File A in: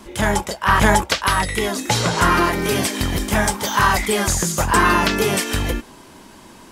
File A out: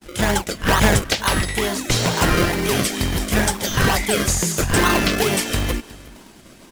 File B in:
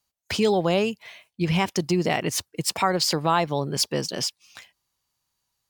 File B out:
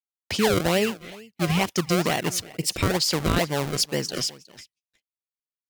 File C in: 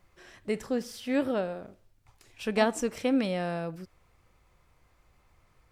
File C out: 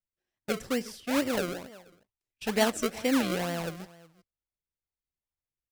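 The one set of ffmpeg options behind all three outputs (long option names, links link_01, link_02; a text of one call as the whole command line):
ffmpeg -i in.wav -filter_complex "[0:a]agate=range=-35dB:threshold=-43dB:ratio=16:detection=peak,aecho=1:1:365:0.1,acrossover=split=1400[link_01][link_02];[link_01]acrusher=samples=34:mix=1:aa=0.000001:lfo=1:lforange=34:lforate=2.2[link_03];[link_03][link_02]amix=inputs=2:normalize=0" out.wav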